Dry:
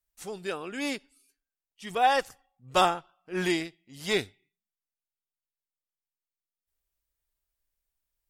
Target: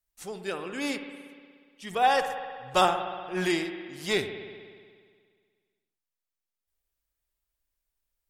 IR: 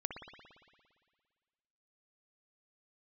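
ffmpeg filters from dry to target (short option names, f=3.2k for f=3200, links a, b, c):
-filter_complex "[0:a]asplit=2[a][b];[1:a]atrim=start_sample=2205,asetrate=42336,aresample=44100[c];[b][c]afir=irnorm=-1:irlink=0,volume=1dB[d];[a][d]amix=inputs=2:normalize=0,volume=-5.5dB"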